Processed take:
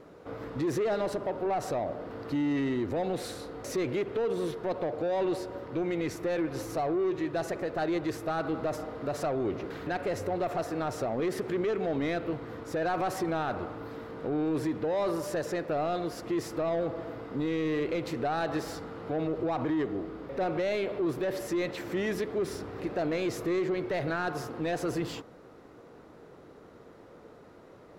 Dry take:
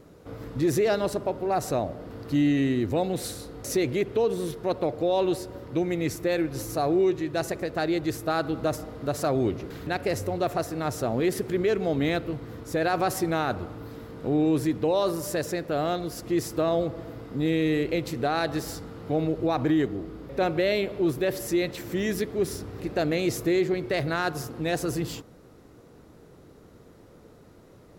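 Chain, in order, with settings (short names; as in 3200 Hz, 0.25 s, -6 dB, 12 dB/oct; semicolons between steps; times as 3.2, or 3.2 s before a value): overdrive pedal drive 15 dB, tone 1400 Hz, clips at -15.5 dBFS; limiter -20 dBFS, peak gain reduction 4 dB; gain -3 dB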